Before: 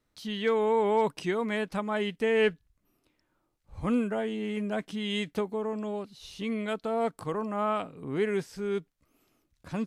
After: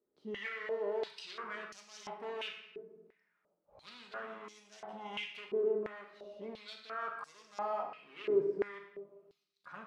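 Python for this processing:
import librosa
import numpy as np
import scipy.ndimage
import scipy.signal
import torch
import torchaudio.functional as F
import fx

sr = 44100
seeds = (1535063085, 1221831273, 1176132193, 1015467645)

y = fx.peak_eq(x, sr, hz=900.0, db=2.5, octaves=2.6)
y = np.clip(10.0 ** (30.0 / 20.0) * y, -1.0, 1.0) / 10.0 ** (30.0 / 20.0)
y = fx.room_shoebox(y, sr, seeds[0], volume_m3=680.0, walls='mixed', distance_m=1.3)
y = fx.filter_held_bandpass(y, sr, hz=2.9, low_hz=400.0, high_hz=6000.0)
y = F.gain(torch.from_numpy(y), 1.5).numpy()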